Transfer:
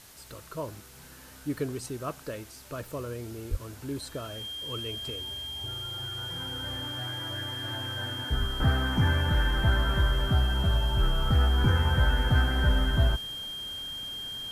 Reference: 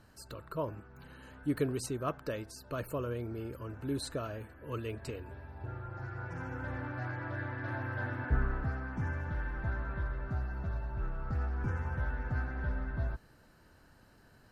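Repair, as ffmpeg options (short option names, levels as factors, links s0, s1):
-filter_complex "[0:a]bandreject=f=3200:w=30,asplit=3[s0][s1][s2];[s0]afade=t=out:st=3.5:d=0.02[s3];[s1]highpass=f=140:w=0.5412,highpass=f=140:w=1.3066,afade=t=in:st=3.5:d=0.02,afade=t=out:st=3.62:d=0.02[s4];[s2]afade=t=in:st=3.62:d=0.02[s5];[s3][s4][s5]amix=inputs=3:normalize=0,asplit=3[s6][s7][s8];[s6]afade=t=out:st=8.39:d=0.02[s9];[s7]highpass=f=140:w=0.5412,highpass=f=140:w=1.3066,afade=t=in:st=8.39:d=0.02,afade=t=out:st=8.51:d=0.02[s10];[s8]afade=t=in:st=8.51:d=0.02[s11];[s9][s10][s11]amix=inputs=3:normalize=0,afwtdn=0.0028,asetnsamples=n=441:p=0,asendcmd='8.6 volume volume -11dB',volume=1"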